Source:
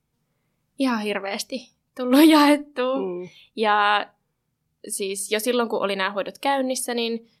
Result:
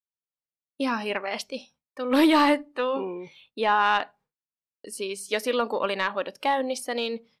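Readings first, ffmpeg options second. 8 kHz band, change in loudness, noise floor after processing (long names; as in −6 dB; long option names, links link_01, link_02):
−9.0 dB, −3.5 dB, below −85 dBFS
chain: -filter_complex "[0:a]asplit=2[link_01][link_02];[link_02]highpass=frequency=720:poles=1,volume=9dB,asoftclip=type=tanh:threshold=-4.5dB[link_03];[link_01][link_03]amix=inputs=2:normalize=0,lowpass=frequency=2500:poles=1,volume=-6dB,agate=range=-33dB:threshold=-47dB:ratio=3:detection=peak,volume=-4dB"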